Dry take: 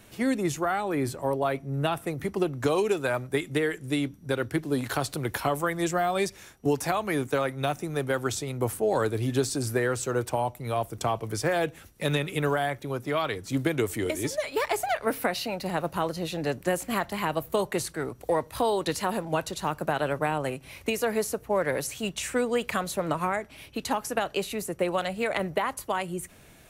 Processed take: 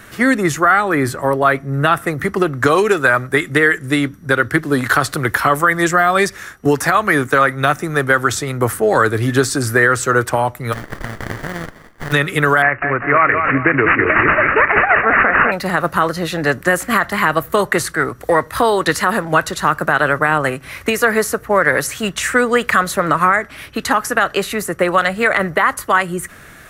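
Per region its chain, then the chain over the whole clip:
0:10.72–0:12.11: compressing power law on the bin magnitudes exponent 0.19 + downward compressor 12 to 1, threshold −33 dBFS + windowed peak hold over 33 samples
0:12.62–0:15.52: bass and treble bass −3 dB, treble +10 dB + repeating echo 200 ms, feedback 38%, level −7 dB + bad sample-rate conversion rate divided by 8×, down none, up filtered
whole clip: flat-topped bell 1,500 Hz +10.5 dB 1 octave; boost into a limiter +11.5 dB; level −1 dB

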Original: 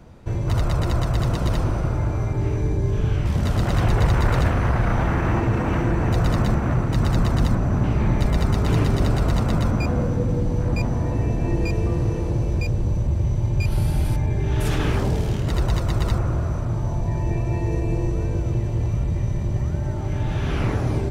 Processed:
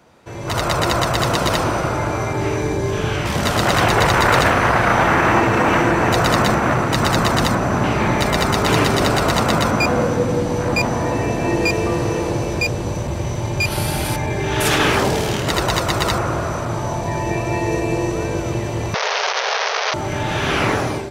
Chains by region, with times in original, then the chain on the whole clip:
0:18.94–0:19.94: wrap-around overflow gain 26 dB + linear-phase brick-wall band-pass 390–6,300 Hz + highs frequency-modulated by the lows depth 0.14 ms
whole clip: high-pass filter 730 Hz 6 dB per octave; automatic gain control gain up to 11 dB; level +3.5 dB

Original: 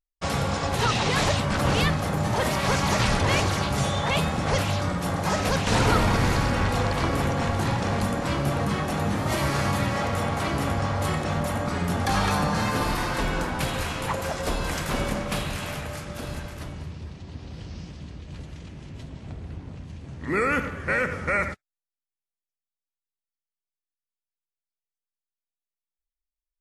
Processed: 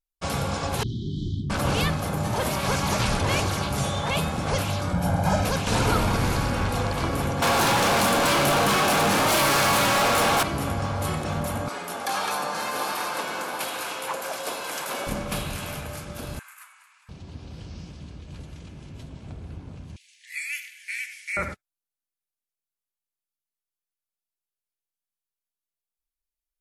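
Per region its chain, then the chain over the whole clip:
0:00.83–0:01.50: linear-phase brick-wall band-stop 400–3,000 Hz + head-to-tape spacing loss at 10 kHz 40 dB
0:04.93–0:05.45: tilt shelving filter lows +4 dB, about 1,300 Hz + comb filter 1.3 ms, depth 59%
0:07.42–0:10.43: high-pass filter 98 Hz + mid-hump overdrive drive 31 dB, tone 6,900 Hz, clips at −13 dBFS
0:11.68–0:15.07: high-pass filter 450 Hz + single-tap delay 727 ms −7.5 dB
0:16.39–0:17.09: Butterworth high-pass 1,100 Hz + flat-topped bell 4,200 Hz −11 dB 1.2 octaves
0:19.96–0:21.37: Butterworth high-pass 1,900 Hz 72 dB per octave + high-shelf EQ 3,200 Hz +6.5 dB
whole clip: parametric band 12,000 Hz +7 dB 0.71 octaves; notch filter 1,900 Hz, Q 10; level −1.5 dB

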